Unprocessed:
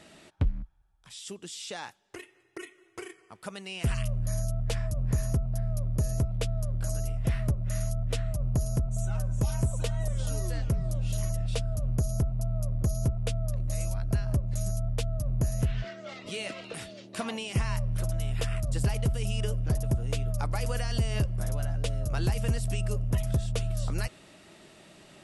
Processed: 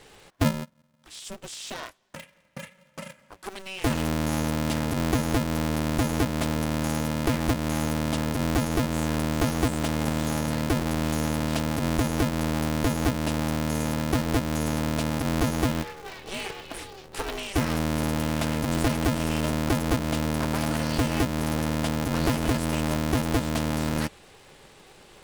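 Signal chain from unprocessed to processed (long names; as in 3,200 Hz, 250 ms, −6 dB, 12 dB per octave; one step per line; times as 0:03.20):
ring modulator with a square carrier 190 Hz
level +2 dB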